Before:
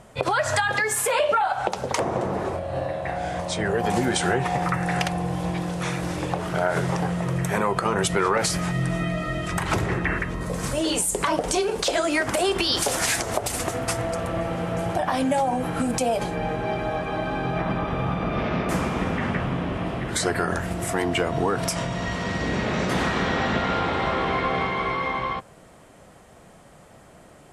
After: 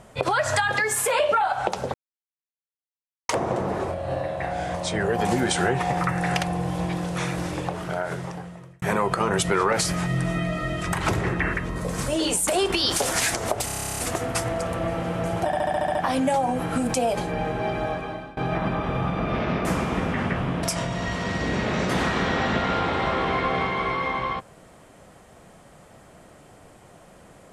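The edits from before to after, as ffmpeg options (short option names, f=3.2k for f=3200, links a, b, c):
-filter_complex "[0:a]asplit=24[a][b][c][d][e][f][g][h][i][j][k][l][m][n][o][p][q][r][s][t][u][v][w][x];[a]atrim=end=1.94,asetpts=PTS-STARTPTS,afade=t=out:st=1.936:d=0.004:c=hsin,apad=pad_dur=1.35[y];[b]atrim=start=1.94:end=7.47,asetpts=PTS-STARTPTS,afade=t=in:d=0.004:c=hsin,afade=t=out:st=4.06:d=1.47[z];[c]atrim=start=7.47:end=11.122,asetpts=PTS-STARTPTS,afade=t=in:d=0.004:c=hsin[aa];[d]atrim=start=12.328:end=13.542[ab];[e]atrim=start=13.508:end=13.542[ac];[f]atrim=start=13.508:end=13.542[ad];[g]atrim=start=13.508:end=13.542[ae];[h]atrim=start=13.508:end=13.542[af];[i]atrim=start=13.508:end=13.542[ag];[j]atrim=start=13.508:end=13.542[ah];[k]atrim=start=13.508:end=13.542[ai];[l]atrim=start=13.508:end=13.542[aj];[m]atrim=start=13.508:end=13.542[ak];[n]atrim=start=13.508:end=13.542[al];[o]atrim=start=13.508:end=15.062[am];[p]atrim=start=14.988:end=15.062[an];[q]atrim=start=14.988:end=15.062[ao];[r]atrim=start=14.988:end=15.062[ap];[s]atrim=start=14.988:end=15.062[aq];[t]atrim=start=14.988:end=15.062[ar];[u]atrim=start=14.988:end=15.062[as];[v]atrim=start=14.988:end=17.41,asetpts=PTS-STARTPTS,afade=t=out:st=1.922:d=0.5:silence=0.0707946[at];[w]atrim=start=17.41:end=19.672,asetpts=PTS-STARTPTS,afade=t=in:d=0.004:c=hsin:silence=0.0707946[au];[x]atrim=start=21.628[av];[y][z][aa]concat=n=3:v=0:a=1[aw];[aw][ab]acrossfade=d=0.004:c1=hsin:c2=hsin[ax];[ax][ac]acrossfade=d=0.004:c1=hsin:c2=hsin[ay];[ay][ad]acrossfade=d=0.004:c1=hsin:c2=hsin[az];[az][ae]acrossfade=d=0.004:c1=hsin:c2=hsin[ba];[ba][af]acrossfade=d=0.004:c1=hsin:c2=hsin[bb];[bb][ag]acrossfade=d=0.004:c1=hsin:c2=hsin[bc];[bc][ah]acrossfade=d=0.004:c1=hsin:c2=hsin[bd];[bd][ai]acrossfade=d=0.004:c1=hsin:c2=hsin[be];[be][aj]acrossfade=d=0.004:c1=hsin:c2=hsin[bf];[bf][ak]acrossfade=d=0.004:c1=hsin:c2=hsin[bg];[bg][al]acrossfade=d=0.004:c1=hsin:c2=hsin[bh];[bh][am]acrossfade=d=0.004:c1=hsin:c2=hsin[bi];[bi][an]acrossfade=d=0.004:c1=hsin:c2=hsin[bj];[bj][ao]acrossfade=d=0.004:c1=hsin:c2=hsin[bk];[bk][ap]acrossfade=d=0.004:c1=hsin:c2=hsin[bl];[bl][aq]acrossfade=d=0.004:c1=hsin:c2=hsin[bm];[bm][ar]acrossfade=d=0.004:c1=hsin:c2=hsin[bn];[bn][as]acrossfade=d=0.004:c1=hsin:c2=hsin[bo];[at][au]concat=n=2:v=0:a=1[bp];[bo][bp]acrossfade=d=0.004:c1=hsin:c2=hsin[bq];[bq][av]acrossfade=d=0.004:c1=hsin:c2=hsin"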